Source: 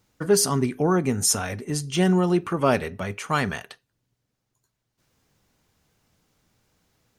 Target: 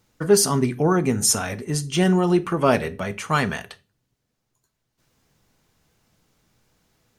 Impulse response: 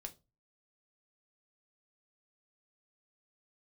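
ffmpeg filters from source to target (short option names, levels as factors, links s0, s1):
-filter_complex "[0:a]asplit=2[s0][s1];[1:a]atrim=start_sample=2205,asetrate=33957,aresample=44100[s2];[s1][s2]afir=irnorm=-1:irlink=0,volume=1[s3];[s0][s3]amix=inputs=2:normalize=0,volume=0.794"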